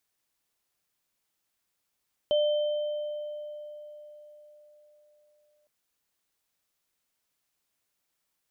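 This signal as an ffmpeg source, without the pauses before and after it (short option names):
-f lavfi -i "aevalsrc='0.0944*pow(10,-3*t/4.31)*sin(2*PI*597*t)+0.0266*pow(10,-3*t/2.27)*sin(2*PI*3100*t)':d=3.36:s=44100"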